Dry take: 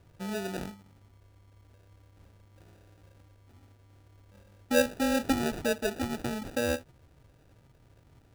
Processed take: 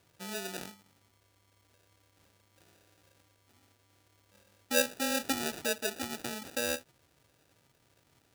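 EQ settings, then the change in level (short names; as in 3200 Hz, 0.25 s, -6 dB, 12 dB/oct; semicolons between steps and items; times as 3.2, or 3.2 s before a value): HPF 240 Hz 6 dB/oct; high shelf 2100 Hz +10.5 dB; -5.5 dB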